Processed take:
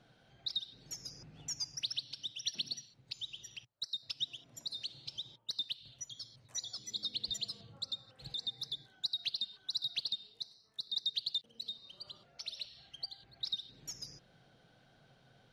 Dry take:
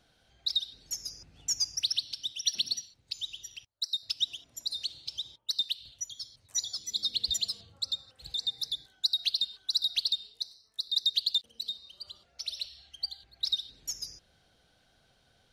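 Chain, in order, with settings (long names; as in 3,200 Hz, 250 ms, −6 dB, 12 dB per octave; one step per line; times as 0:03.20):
low-pass filter 2,100 Hz 6 dB per octave
low shelf with overshoot 100 Hz −7 dB, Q 3
in parallel at +1.5 dB: downward compressor, threshold −47 dBFS, peak gain reduction 17 dB
on the sum: level −3.5 dB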